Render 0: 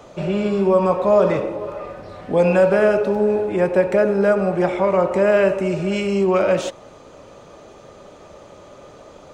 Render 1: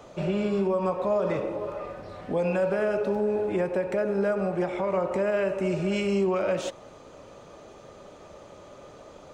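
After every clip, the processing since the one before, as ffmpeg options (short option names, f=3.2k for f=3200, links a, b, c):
-af "alimiter=limit=-13dB:level=0:latency=1:release=200,volume=-4.5dB"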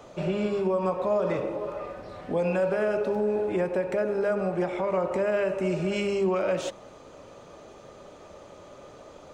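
-af "bandreject=f=50:t=h:w=6,bandreject=f=100:t=h:w=6,bandreject=f=150:t=h:w=6,bandreject=f=200:t=h:w=6"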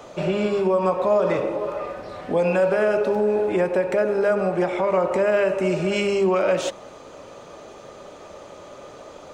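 -af "lowshelf=f=230:g=-6,volume=7dB"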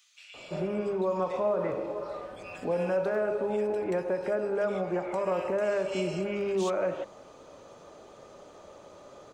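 -filter_complex "[0:a]acrossover=split=2300[a][b];[a]adelay=340[c];[c][b]amix=inputs=2:normalize=0,volume=-8.5dB"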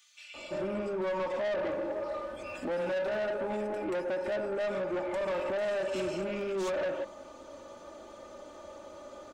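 -af "aecho=1:1:3.4:0.72,asoftclip=type=tanh:threshold=-29dB"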